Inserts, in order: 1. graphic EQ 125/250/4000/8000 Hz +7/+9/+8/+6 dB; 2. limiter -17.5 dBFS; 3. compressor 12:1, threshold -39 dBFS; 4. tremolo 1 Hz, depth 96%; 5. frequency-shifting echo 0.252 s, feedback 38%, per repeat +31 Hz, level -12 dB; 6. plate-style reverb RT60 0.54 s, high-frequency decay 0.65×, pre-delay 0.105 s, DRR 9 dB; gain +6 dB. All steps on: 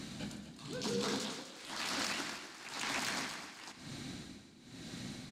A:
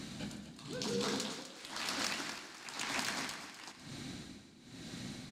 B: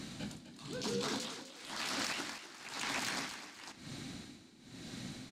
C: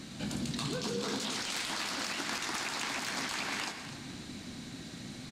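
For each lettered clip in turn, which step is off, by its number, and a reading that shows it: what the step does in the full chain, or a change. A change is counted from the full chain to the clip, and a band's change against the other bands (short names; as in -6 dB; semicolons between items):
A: 2, crest factor change +5.0 dB; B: 6, echo-to-direct -7.0 dB to -11.5 dB; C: 4, momentary loudness spread change -3 LU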